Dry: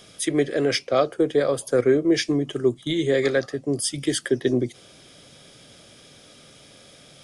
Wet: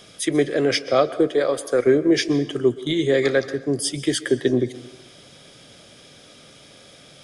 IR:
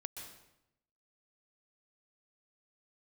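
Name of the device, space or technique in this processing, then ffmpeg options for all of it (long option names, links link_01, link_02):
filtered reverb send: -filter_complex "[0:a]asettb=1/sr,asplit=3[link_01][link_02][link_03];[link_01]atrim=end=1.274[link_04];[link_02]atrim=start=1.27:end=1.87,asetpts=PTS-STARTPTS,afade=type=in:duration=0.004:curve=qsin,afade=type=out:start_time=0.596:duration=0.004:curve=qsin,equalizer=frequency=120:width_type=o:width=2.1:gain=-9.5[link_05];[link_03]atrim=start=1.866[link_06];[link_04][link_05]acrossfade=duration=0.004:curve1=hsin:curve2=qsin[link_07];[link_07][link_06]acrossfade=duration=0.004:curve1=qsin:curve2=hsin,asplit=2[link_08][link_09];[link_09]highpass=frequency=180:poles=1,lowpass=7700[link_10];[1:a]atrim=start_sample=2205[link_11];[link_10][link_11]afir=irnorm=-1:irlink=0,volume=-5.5dB[link_12];[link_08][link_12]amix=inputs=2:normalize=0"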